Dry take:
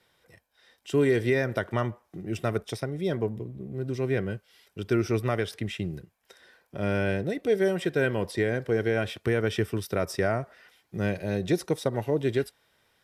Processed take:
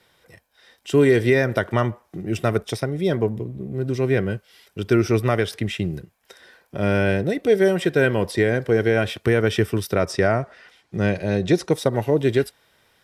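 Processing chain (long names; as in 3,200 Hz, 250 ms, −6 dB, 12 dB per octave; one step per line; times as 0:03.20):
0:09.93–0:11.71: low-pass filter 8,000 Hz 12 dB per octave
level +7 dB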